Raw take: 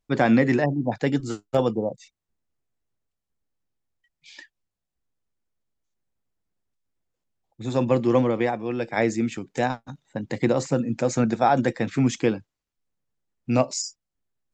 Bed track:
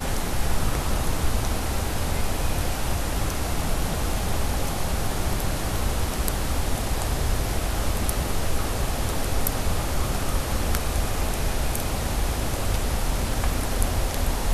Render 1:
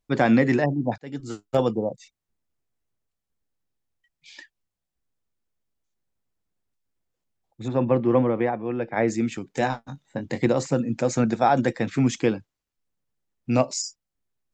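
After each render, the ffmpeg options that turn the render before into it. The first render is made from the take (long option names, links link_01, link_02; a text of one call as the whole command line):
ffmpeg -i in.wav -filter_complex "[0:a]asettb=1/sr,asplit=3[link_01][link_02][link_03];[link_01]atrim=end=7.684[link_04];[link_02]atrim=start=7.68:end=9.08,asetpts=PTS-STARTPTS,afade=type=in:duration=0.004:curve=qsin,afade=type=out:start_time=1.396:duration=0.004:curve=qsin,lowpass=2000[link_05];[link_03]atrim=start=9.076[link_06];[link_04][link_05]acrossfade=duration=0.004:curve1=hsin:curve2=qsin[link_07];[link_07][link_06]acrossfade=duration=0.004:curve1=qsin:curve2=hsin,asettb=1/sr,asplit=3[link_08][link_09][link_10];[link_08]atrim=end=9.594[link_11];[link_09]atrim=start=9.59:end=10.46,asetpts=PTS-STARTPTS,afade=type=in:duration=0.004:curve=qsin,afade=type=out:start_time=0.866:duration=0.004:curve=qsin,asplit=2[link_12][link_13];[link_13]adelay=22,volume=-7.5dB[link_14];[link_12][link_14]amix=inputs=2:normalize=0,atrim=end_sample=38367[link_15];[link_10]atrim=start=10.456[link_16];[link_11][link_15]acrossfade=duration=0.004:curve1=hsin:curve2=qsin[link_17];[link_17][link_16]acrossfade=duration=0.004:curve1=qsin:curve2=hsin,asplit=2[link_18][link_19];[link_18]atrim=end=0.98,asetpts=PTS-STARTPTS,afade=type=out:start_time=0.976:duration=0.004:curve=hsin[link_20];[link_19]atrim=start=0.98,asetpts=PTS-STARTPTS,afade=type=in:duration=0.5[link_21];[link_20][link_21]concat=n=2:v=0:a=1" out.wav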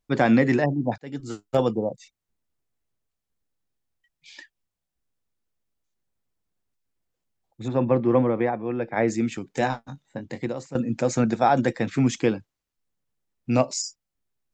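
ffmpeg -i in.wav -filter_complex "[0:a]asettb=1/sr,asplit=3[link_01][link_02][link_03];[link_01]atrim=end=7.814[link_04];[link_02]atrim=start=7.81:end=8.96,asetpts=PTS-STARTPTS,afade=type=in:duration=0.004:curve=qsin,afade=type=out:start_time=1.146:duration=0.004:curve=qsin,bandreject=frequency=2900:width=12[link_05];[link_03]atrim=start=8.956[link_06];[link_04][link_05]acrossfade=duration=0.004:curve1=hsin:curve2=qsin[link_07];[link_07][link_06]acrossfade=duration=0.004:curve1=qsin:curve2=hsin,asplit=2[link_08][link_09];[link_08]atrim=end=10.75,asetpts=PTS-STARTPTS,afade=type=out:start_time=9.77:duration=0.98:silence=0.16788[link_10];[link_09]atrim=start=10.75,asetpts=PTS-STARTPTS,afade=type=in:duration=0.004:curve=hsin:silence=0.16788[link_11];[link_10][link_11]concat=n=2:v=0:a=1" out.wav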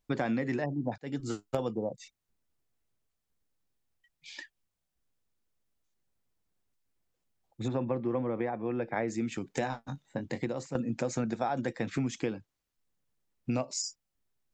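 ffmpeg -i in.wav -af "acompressor=threshold=-29dB:ratio=5" out.wav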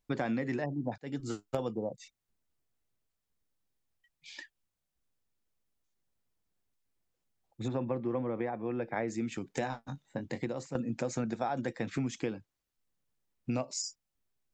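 ffmpeg -i in.wav -af "volume=-2dB" out.wav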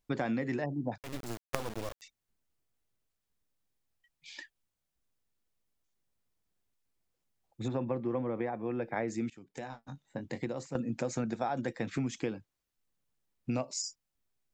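ffmpeg -i in.wav -filter_complex "[0:a]asettb=1/sr,asplit=3[link_01][link_02][link_03];[link_01]atrim=end=0.994[link_04];[link_02]atrim=start=0.99:end=2.02,asetpts=PTS-STARTPTS,afade=type=in:duration=0.004:curve=qsin,afade=type=out:start_time=1.026:duration=0.004:curve=qsin,acrusher=bits=4:dc=4:mix=0:aa=0.000001[link_05];[link_03]atrim=start=2.016[link_06];[link_04][link_05]acrossfade=duration=0.004:curve1=hsin:curve2=qsin[link_07];[link_07][link_06]acrossfade=duration=0.004:curve1=qsin:curve2=hsin,asplit=2[link_08][link_09];[link_08]atrim=end=9.3,asetpts=PTS-STARTPTS,afade=type=out:start_time=9.296:duration=0.004:curve=hsin:silence=0.112202[link_10];[link_09]atrim=start=9.3,asetpts=PTS-STARTPTS,afade=type=in:duration=1.58:curve=qsin:silence=0.112202[link_11];[link_10][link_11]concat=n=2:v=0:a=1" out.wav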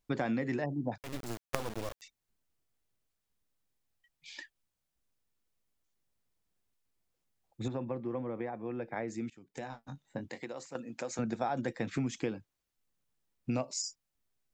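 ffmpeg -i in.wav -filter_complex "[0:a]asettb=1/sr,asplit=3[link_01][link_02][link_03];[link_01]atrim=end=10.294[link_04];[link_02]atrim=start=10.29:end=11.19,asetpts=PTS-STARTPTS,afade=type=in:duration=0.004:curve=qsin,afade=type=out:start_time=0.896:duration=0.004:curve=qsin,highpass=frequency=660:poles=1[link_05];[link_03]atrim=start=11.186[link_06];[link_04][link_05]acrossfade=duration=0.004:curve1=hsin:curve2=qsin[link_07];[link_07][link_06]acrossfade=duration=0.004:curve1=qsin:curve2=hsin,asplit=3[link_08][link_09][link_10];[link_08]atrim=end=7.682[link_11];[link_09]atrim=start=7.678:end=9.542,asetpts=PTS-STARTPTS,volume=-3.5dB[link_12];[link_10]atrim=start=9.538[link_13];[link_11][link_12]acrossfade=duration=0.004:curve1=hsin:curve2=hsin[link_14];[link_14][link_13]acrossfade=duration=0.004:curve1=hsin:curve2=hsin" out.wav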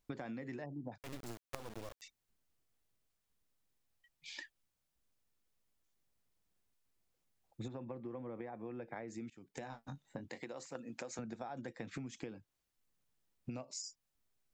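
ffmpeg -i in.wav -af "acompressor=threshold=-42dB:ratio=6" out.wav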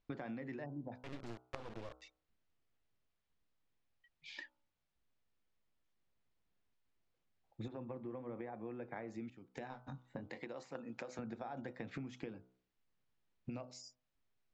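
ffmpeg -i in.wav -af "lowpass=3700,bandreject=frequency=62.77:width_type=h:width=4,bandreject=frequency=125.54:width_type=h:width=4,bandreject=frequency=188.31:width_type=h:width=4,bandreject=frequency=251.08:width_type=h:width=4,bandreject=frequency=313.85:width_type=h:width=4,bandreject=frequency=376.62:width_type=h:width=4,bandreject=frequency=439.39:width_type=h:width=4,bandreject=frequency=502.16:width_type=h:width=4,bandreject=frequency=564.93:width_type=h:width=4,bandreject=frequency=627.7:width_type=h:width=4,bandreject=frequency=690.47:width_type=h:width=4,bandreject=frequency=753.24:width_type=h:width=4,bandreject=frequency=816.01:width_type=h:width=4,bandreject=frequency=878.78:width_type=h:width=4,bandreject=frequency=941.55:width_type=h:width=4,bandreject=frequency=1004.32:width_type=h:width=4,bandreject=frequency=1067.09:width_type=h:width=4,bandreject=frequency=1129.86:width_type=h:width=4,bandreject=frequency=1192.63:width_type=h:width=4,bandreject=frequency=1255.4:width_type=h:width=4,bandreject=frequency=1318.17:width_type=h:width=4,bandreject=frequency=1380.94:width_type=h:width=4,bandreject=frequency=1443.71:width_type=h:width=4,bandreject=frequency=1506.48:width_type=h:width=4" out.wav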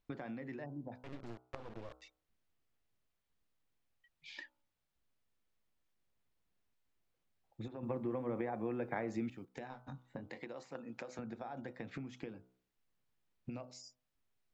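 ffmpeg -i in.wav -filter_complex "[0:a]asettb=1/sr,asplit=3[link_01][link_02][link_03];[link_01]atrim=end=1.034[link_04];[link_02]atrim=start=1.03:end=1.89,asetpts=PTS-STARTPTS,afade=type=in:duration=0.004:curve=qsin,afade=type=out:start_time=0.856:duration=0.004:curve=qsin,highshelf=frequency=2200:gain=-6[link_05];[link_03]atrim=start=1.886[link_06];[link_04][link_05]acrossfade=duration=0.004:curve1=hsin:curve2=qsin[link_07];[link_07][link_06]acrossfade=duration=0.004:curve1=qsin:curve2=hsin,asplit=3[link_08][link_09][link_10];[link_08]atrim=end=7.832[link_11];[link_09]atrim=start=7.828:end=9.452,asetpts=PTS-STARTPTS,volume=7.5dB[link_12];[link_10]atrim=start=9.448[link_13];[link_11][link_12]acrossfade=duration=0.004:curve1=hsin:curve2=hsin[link_14];[link_14][link_13]acrossfade=duration=0.004:curve1=hsin:curve2=hsin" out.wav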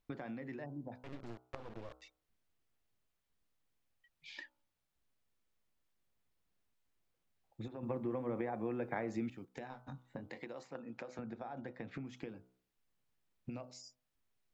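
ffmpeg -i in.wav -filter_complex "[0:a]asettb=1/sr,asplit=3[link_01][link_02][link_03];[link_01]atrim=end=10.674[link_04];[link_02]atrim=start=10.67:end=12.05,asetpts=PTS-STARTPTS,afade=type=in:duration=0.004:curve=qsin,afade=type=out:start_time=1.376:duration=0.004:curve=qsin,lowpass=frequency=3700:poles=1[link_05];[link_03]atrim=start=12.046[link_06];[link_04][link_05]acrossfade=duration=0.004:curve1=hsin:curve2=qsin[link_07];[link_07][link_06]acrossfade=duration=0.004:curve1=qsin:curve2=hsin" out.wav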